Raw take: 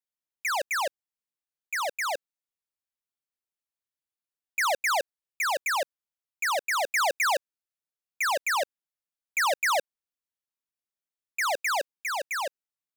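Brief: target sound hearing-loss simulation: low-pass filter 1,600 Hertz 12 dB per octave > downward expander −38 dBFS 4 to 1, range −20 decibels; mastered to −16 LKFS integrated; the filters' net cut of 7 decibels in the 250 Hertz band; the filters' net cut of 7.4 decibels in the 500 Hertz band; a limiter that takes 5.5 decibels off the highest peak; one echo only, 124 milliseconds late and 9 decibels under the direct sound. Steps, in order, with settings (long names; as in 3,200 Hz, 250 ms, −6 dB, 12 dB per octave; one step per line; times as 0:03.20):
parametric band 250 Hz −5.5 dB
parametric band 500 Hz −9 dB
brickwall limiter −25 dBFS
low-pass filter 1,600 Hz 12 dB per octave
single-tap delay 124 ms −9 dB
downward expander −38 dBFS 4 to 1, range −20 dB
level +19.5 dB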